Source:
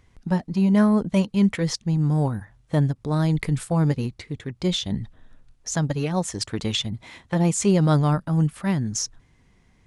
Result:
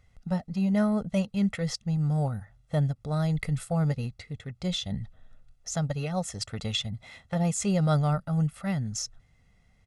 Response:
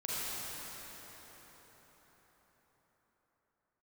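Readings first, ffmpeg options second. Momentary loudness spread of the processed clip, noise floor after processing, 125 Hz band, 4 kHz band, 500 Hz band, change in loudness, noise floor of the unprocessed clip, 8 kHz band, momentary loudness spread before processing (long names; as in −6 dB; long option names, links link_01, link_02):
12 LU, −63 dBFS, −5.0 dB, −5.0 dB, −6.0 dB, −6.0 dB, −60 dBFS, −6.0 dB, 12 LU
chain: -af "aecho=1:1:1.5:0.68,volume=-7dB"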